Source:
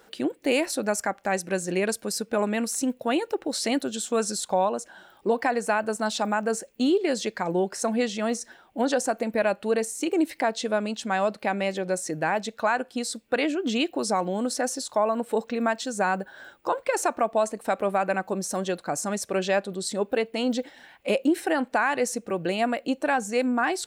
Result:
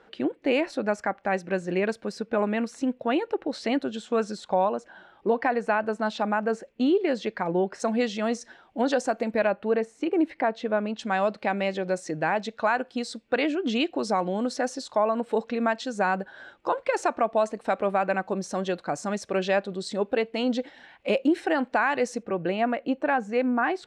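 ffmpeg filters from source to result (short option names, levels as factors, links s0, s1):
-af "asetnsamples=n=441:p=0,asendcmd='7.8 lowpass f 5000;9.47 lowpass f 2200;10.99 lowpass f 4600;22.23 lowpass f 2400',lowpass=2900"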